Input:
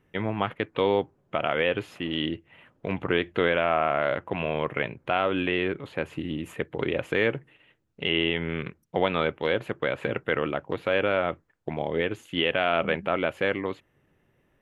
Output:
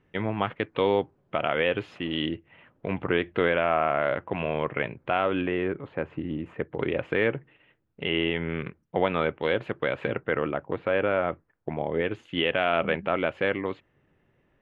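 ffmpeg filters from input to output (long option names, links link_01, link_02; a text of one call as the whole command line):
ffmpeg -i in.wav -af "asetnsamples=nb_out_samples=441:pad=0,asendcmd='2.29 lowpass f 3000;5.41 lowpass f 1700;6.75 lowpass f 2700;9.42 lowpass f 4100;10.14 lowpass f 2100;12.05 lowpass f 3700',lowpass=4600" out.wav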